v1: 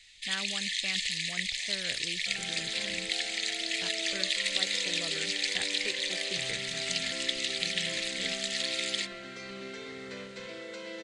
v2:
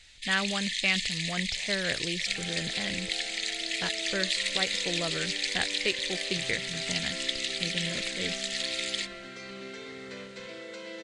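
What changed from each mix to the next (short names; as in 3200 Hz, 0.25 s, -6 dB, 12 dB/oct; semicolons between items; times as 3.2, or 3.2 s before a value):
speech +10.0 dB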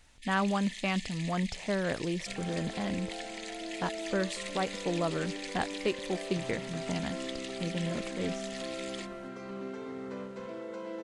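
speech: add high shelf 6000 Hz +11.5 dB; master: add ten-band EQ 250 Hz +6 dB, 1000 Hz +9 dB, 2000 Hz -9 dB, 4000 Hz -12 dB, 8000 Hz -8 dB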